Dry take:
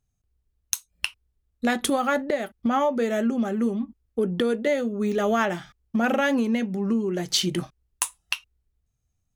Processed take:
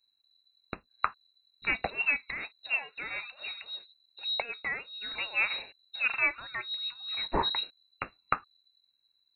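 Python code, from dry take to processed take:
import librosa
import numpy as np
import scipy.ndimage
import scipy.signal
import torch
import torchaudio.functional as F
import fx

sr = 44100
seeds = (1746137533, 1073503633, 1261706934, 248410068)

y = fx.brickwall_bandstop(x, sr, low_hz=190.0, high_hz=1200.0)
y = fx.freq_invert(y, sr, carrier_hz=4000)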